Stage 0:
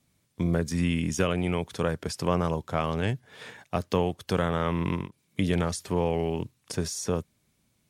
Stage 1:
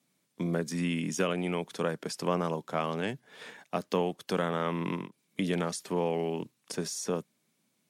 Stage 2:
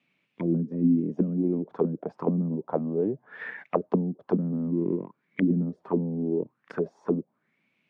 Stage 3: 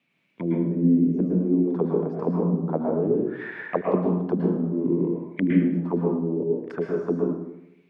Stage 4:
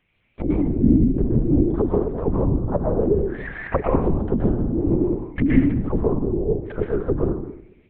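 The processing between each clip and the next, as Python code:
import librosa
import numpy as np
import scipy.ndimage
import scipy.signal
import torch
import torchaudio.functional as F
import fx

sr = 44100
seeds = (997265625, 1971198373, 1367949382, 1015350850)

y1 = scipy.signal.sosfilt(scipy.signal.butter(4, 170.0, 'highpass', fs=sr, output='sos'), x)
y1 = y1 * librosa.db_to_amplitude(-2.5)
y2 = fx.envelope_lowpass(y1, sr, base_hz=220.0, top_hz=2600.0, q=4.8, full_db=-25.5, direction='down')
y3 = fx.echo_filtered(y2, sr, ms=77, feedback_pct=69, hz=2000.0, wet_db=-21.5)
y3 = fx.rev_plate(y3, sr, seeds[0], rt60_s=0.81, hf_ratio=0.85, predelay_ms=100, drr_db=-1.0)
y4 = fx.lpc_vocoder(y3, sr, seeds[1], excitation='whisper', order=8)
y4 = fx.vibrato_shape(y4, sr, shape='saw_up', rate_hz=4.9, depth_cents=100.0)
y4 = y4 * librosa.db_to_amplitude(3.5)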